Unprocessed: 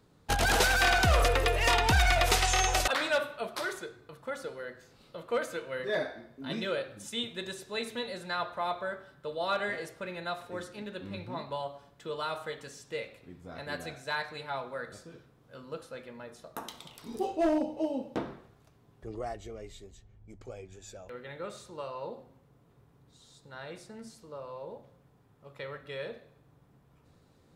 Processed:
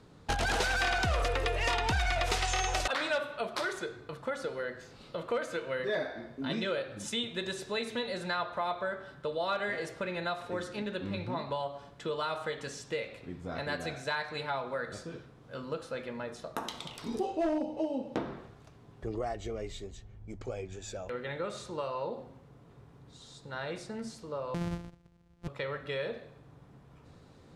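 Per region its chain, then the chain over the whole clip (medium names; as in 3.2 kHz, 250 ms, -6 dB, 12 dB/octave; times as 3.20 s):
24.54–25.48 s: sorted samples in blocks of 256 samples + gate -59 dBFS, range -14 dB + bass shelf 240 Hz +12 dB
whole clip: Bessel low-pass 7.2 kHz, order 2; compression 2.5:1, threshold -40 dBFS; trim +7 dB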